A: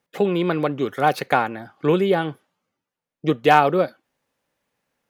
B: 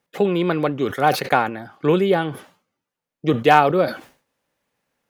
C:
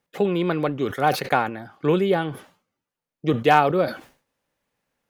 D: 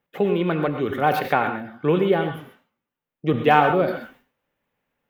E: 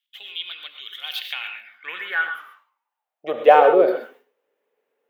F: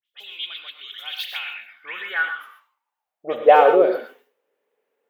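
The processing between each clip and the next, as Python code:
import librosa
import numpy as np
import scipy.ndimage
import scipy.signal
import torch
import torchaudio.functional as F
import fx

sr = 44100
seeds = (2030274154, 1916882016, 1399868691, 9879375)

y1 = fx.sustainer(x, sr, db_per_s=140.0)
y1 = F.gain(torch.from_numpy(y1), 1.0).numpy()
y2 = fx.low_shelf(y1, sr, hz=68.0, db=7.5)
y2 = F.gain(torch.from_numpy(y2), -3.0).numpy()
y3 = fx.band_shelf(y2, sr, hz=6700.0, db=-10.5, octaves=1.7)
y3 = fx.rev_gated(y3, sr, seeds[0], gate_ms=150, shape='rising', drr_db=6.5)
y4 = fx.filter_sweep_highpass(y3, sr, from_hz=3300.0, to_hz=430.0, start_s=1.24, end_s=3.81, q=6.6)
y4 = F.gain(torch.from_numpy(y4), -2.5).numpy()
y5 = fx.dispersion(y4, sr, late='highs', ms=64.0, hz=2900.0)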